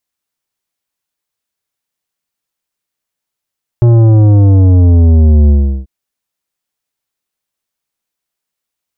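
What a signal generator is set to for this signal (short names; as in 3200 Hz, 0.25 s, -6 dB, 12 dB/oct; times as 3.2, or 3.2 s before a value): sub drop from 120 Hz, over 2.04 s, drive 11 dB, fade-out 0.37 s, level -4.5 dB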